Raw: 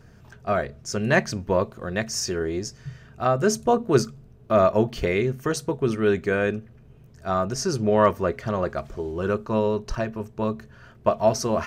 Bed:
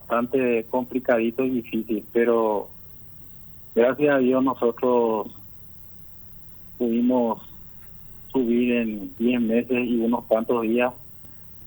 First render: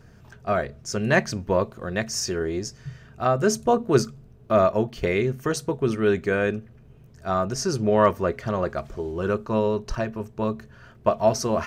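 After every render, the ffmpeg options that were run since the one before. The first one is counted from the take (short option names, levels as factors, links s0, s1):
-filter_complex "[0:a]asplit=2[s0][s1];[s0]atrim=end=5.03,asetpts=PTS-STARTPTS,afade=t=out:st=4.55:d=0.48:silence=0.501187[s2];[s1]atrim=start=5.03,asetpts=PTS-STARTPTS,afade=t=in:d=0.004:c=hsin:silence=0.501187[s3];[s2][s3]concat=n=2:v=0:a=1"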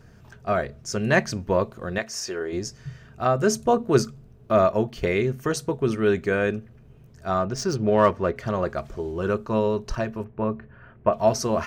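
-filter_complex "[0:a]asettb=1/sr,asplit=3[s0][s1][s2];[s0]atrim=end=1.984[s3];[s1]atrim=start=1.98:end=2.53,asetpts=PTS-STARTPTS,afade=t=in:d=0.004:c=qsin,afade=t=out:st=0.546:d=0.004:c=qsin,bass=f=250:g=-15,treble=f=4000:g=-5[s4];[s2]atrim=start=2.526[s5];[s3][s4]acrossfade=d=0.004:c1=hsin:c2=qsin[s6];[s6][s5]acrossfade=d=0.004:c1=qsin:c2=hsin,asettb=1/sr,asplit=3[s7][s8][s9];[s7]atrim=end=7.404[s10];[s8]atrim=start=7.4:end=8.36,asetpts=PTS-STARTPTS,afade=t=in:d=0.004:c=qsin,afade=t=out:st=0.956:d=0.004:c=qsin,adynamicsmooth=sensitivity=4.5:basefreq=3600[s11];[s9]atrim=start=8.356[s12];[s10][s11]acrossfade=d=0.004:c1=hsin:c2=qsin[s13];[s13][s12]acrossfade=d=0.004:c1=qsin:c2=hsin,asettb=1/sr,asplit=3[s14][s15][s16];[s14]atrim=end=10.244[s17];[s15]atrim=start=10.24:end=11.13,asetpts=PTS-STARTPTS,afade=t=in:d=0.004:c=qsin,afade=t=out:st=0.886:d=0.004:c=qsin,lowpass=f=2500:w=0.5412,lowpass=f=2500:w=1.3066[s18];[s16]atrim=start=11.126[s19];[s17][s18]acrossfade=d=0.004:c1=hsin:c2=qsin[s20];[s20][s19]acrossfade=d=0.004:c1=qsin:c2=hsin"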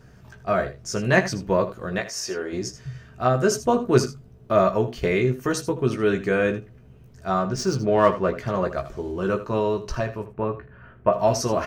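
-filter_complex "[0:a]asplit=2[s0][s1];[s1]adelay=16,volume=0.531[s2];[s0][s2]amix=inputs=2:normalize=0,aecho=1:1:79:0.211"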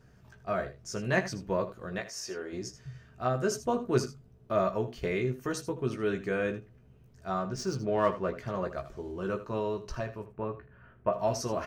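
-af "volume=0.355"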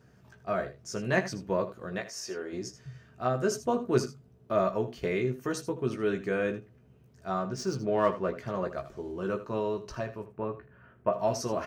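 -af "highpass=f=170:p=1,lowshelf=f=450:g=4"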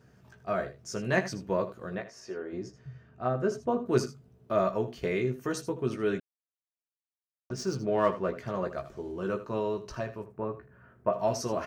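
-filter_complex "[0:a]asettb=1/sr,asplit=3[s0][s1][s2];[s0]atrim=end=1.954[s3];[s1]atrim=start=1.95:end=3.86,asetpts=PTS-STARTPTS,afade=t=in:d=0.004:c=qsin,afade=t=out:st=1.906:d=0.004:c=qsin,lowpass=f=1500:p=1[s4];[s2]atrim=start=3.856[s5];[s3][s4]acrossfade=d=0.004:c1=hsin:c2=qsin[s6];[s6][s5]acrossfade=d=0.004:c1=qsin:c2=hsin,asettb=1/sr,asplit=3[s7][s8][s9];[s7]atrim=end=10.244[s10];[s8]atrim=start=10.24:end=11.1,asetpts=PTS-STARTPTS,afade=t=in:d=0.004:c=qsin,afade=t=out:st=0.856:d=0.004:c=qsin,equalizer=f=3000:t=o:w=0.85:g=-6[s11];[s9]atrim=start=11.096[s12];[s10][s11]acrossfade=d=0.004:c1=hsin:c2=qsin[s13];[s13][s12]acrossfade=d=0.004:c1=qsin:c2=hsin,asplit=3[s14][s15][s16];[s14]atrim=end=6.2,asetpts=PTS-STARTPTS,afade=t=out:st=6.196:d=0.004:c=hsin[s17];[s15]atrim=start=6.2:end=7.5,asetpts=PTS-STARTPTS,volume=0[s18];[s16]atrim=start=7.5,asetpts=PTS-STARTPTS,afade=t=in:d=0.004:c=hsin[s19];[s17][s18][s19]concat=n=3:v=0:a=1"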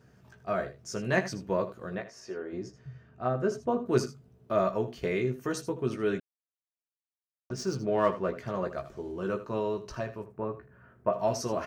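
-af anull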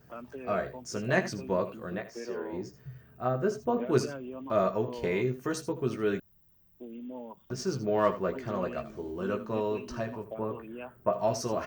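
-filter_complex "[1:a]volume=0.0891[s0];[0:a][s0]amix=inputs=2:normalize=0"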